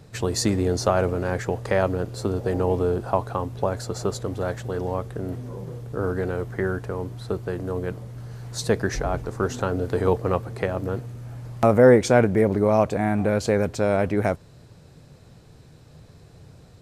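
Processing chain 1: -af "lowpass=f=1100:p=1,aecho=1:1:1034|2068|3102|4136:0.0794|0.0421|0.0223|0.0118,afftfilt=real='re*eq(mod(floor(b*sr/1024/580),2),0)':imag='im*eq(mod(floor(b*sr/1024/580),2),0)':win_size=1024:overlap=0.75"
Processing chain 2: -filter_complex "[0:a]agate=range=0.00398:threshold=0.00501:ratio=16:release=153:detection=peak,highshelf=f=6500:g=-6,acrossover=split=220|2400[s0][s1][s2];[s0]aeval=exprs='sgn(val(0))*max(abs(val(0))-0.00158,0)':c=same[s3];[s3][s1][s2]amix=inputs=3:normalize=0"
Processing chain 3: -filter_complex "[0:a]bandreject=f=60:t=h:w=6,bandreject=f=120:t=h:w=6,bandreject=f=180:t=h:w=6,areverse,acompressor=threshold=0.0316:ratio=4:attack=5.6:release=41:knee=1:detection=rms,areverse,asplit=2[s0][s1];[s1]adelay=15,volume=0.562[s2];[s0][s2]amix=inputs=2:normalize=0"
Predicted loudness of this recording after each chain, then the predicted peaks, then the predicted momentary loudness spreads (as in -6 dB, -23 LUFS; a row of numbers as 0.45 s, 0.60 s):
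-25.5 LUFS, -24.0 LUFS, -32.5 LUFS; -5.5 dBFS, -2.5 dBFS, -17.0 dBFS; 15 LU, 13 LU, 19 LU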